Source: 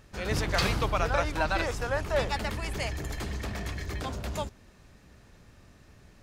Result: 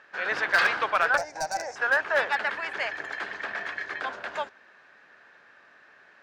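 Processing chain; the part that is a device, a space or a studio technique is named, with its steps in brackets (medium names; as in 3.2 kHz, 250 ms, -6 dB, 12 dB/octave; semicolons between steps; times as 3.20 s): megaphone (band-pass 660–2800 Hz; peaking EQ 1.6 kHz +11.5 dB 0.36 oct; hard clipper -20 dBFS, distortion -16 dB); 1.17–1.76 s: FFT filter 110 Hz 0 dB, 410 Hz -9 dB, 780 Hz +2 dB, 1.2 kHz -24 dB, 2.1 kHz -12 dB, 3.3 kHz -24 dB, 5.7 kHz +10 dB, 12 kHz -3 dB; trim +5 dB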